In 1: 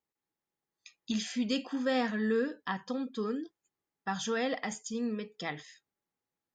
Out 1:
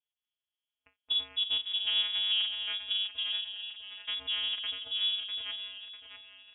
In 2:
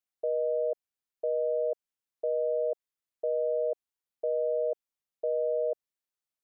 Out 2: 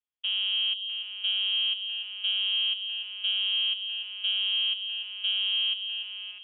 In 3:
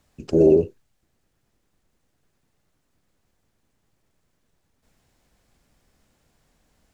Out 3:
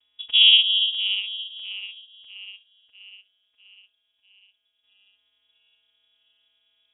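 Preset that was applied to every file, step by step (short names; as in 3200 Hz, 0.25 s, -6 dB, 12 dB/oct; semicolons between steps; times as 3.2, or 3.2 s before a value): vocoder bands 4, saw 196 Hz; split-band echo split 720 Hz, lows 0.288 s, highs 0.649 s, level -7 dB; inverted band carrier 3600 Hz; gain +1 dB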